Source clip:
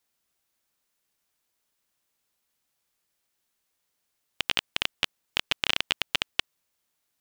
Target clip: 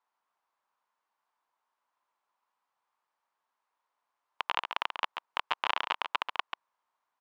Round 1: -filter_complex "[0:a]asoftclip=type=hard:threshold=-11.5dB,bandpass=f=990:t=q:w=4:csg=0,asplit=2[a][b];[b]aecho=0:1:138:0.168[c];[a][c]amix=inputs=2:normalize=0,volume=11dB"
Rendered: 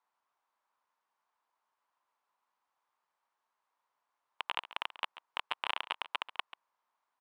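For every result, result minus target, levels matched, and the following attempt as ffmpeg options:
hard clip: distortion +20 dB; echo-to-direct -8 dB
-filter_complex "[0:a]asoftclip=type=hard:threshold=-5dB,bandpass=f=990:t=q:w=4:csg=0,asplit=2[a][b];[b]aecho=0:1:138:0.168[c];[a][c]amix=inputs=2:normalize=0,volume=11dB"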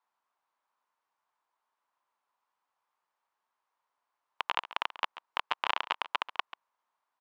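echo-to-direct -8 dB
-filter_complex "[0:a]asoftclip=type=hard:threshold=-5dB,bandpass=f=990:t=q:w=4:csg=0,asplit=2[a][b];[b]aecho=0:1:138:0.422[c];[a][c]amix=inputs=2:normalize=0,volume=11dB"

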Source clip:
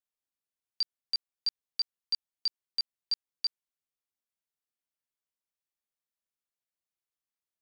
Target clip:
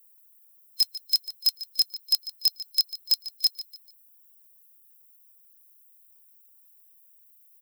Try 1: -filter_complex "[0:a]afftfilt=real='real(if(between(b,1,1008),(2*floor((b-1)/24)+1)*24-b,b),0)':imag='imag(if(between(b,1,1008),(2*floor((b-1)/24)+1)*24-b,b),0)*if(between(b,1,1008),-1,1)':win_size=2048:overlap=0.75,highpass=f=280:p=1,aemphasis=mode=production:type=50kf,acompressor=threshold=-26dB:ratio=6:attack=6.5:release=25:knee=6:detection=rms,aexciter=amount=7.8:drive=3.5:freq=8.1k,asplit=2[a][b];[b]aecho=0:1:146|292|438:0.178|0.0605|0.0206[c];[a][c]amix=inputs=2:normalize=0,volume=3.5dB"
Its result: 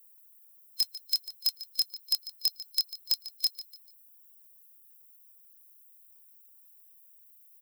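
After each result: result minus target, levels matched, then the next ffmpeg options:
250 Hz band +7.5 dB; compressor: peak gain reduction +6.5 dB
-filter_complex "[0:a]afftfilt=real='real(if(between(b,1,1008),(2*floor((b-1)/24)+1)*24-b,b),0)':imag='imag(if(between(b,1,1008),(2*floor((b-1)/24)+1)*24-b,b),0)*if(between(b,1,1008),-1,1)':win_size=2048:overlap=0.75,highpass=f=760:p=1,aemphasis=mode=production:type=50kf,acompressor=threshold=-26dB:ratio=6:attack=6.5:release=25:knee=6:detection=rms,aexciter=amount=7.8:drive=3.5:freq=8.1k,asplit=2[a][b];[b]aecho=0:1:146|292|438:0.178|0.0605|0.0206[c];[a][c]amix=inputs=2:normalize=0,volume=3.5dB"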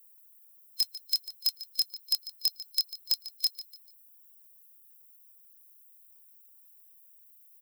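compressor: peak gain reduction +6 dB
-filter_complex "[0:a]afftfilt=real='real(if(between(b,1,1008),(2*floor((b-1)/24)+1)*24-b,b),0)':imag='imag(if(between(b,1,1008),(2*floor((b-1)/24)+1)*24-b,b),0)*if(between(b,1,1008),-1,1)':win_size=2048:overlap=0.75,highpass=f=760:p=1,aemphasis=mode=production:type=50kf,aexciter=amount=7.8:drive=3.5:freq=8.1k,asplit=2[a][b];[b]aecho=0:1:146|292|438:0.178|0.0605|0.0206[c];[a][c]amix=inputs=2:normalize=0,volume=3.5dB"

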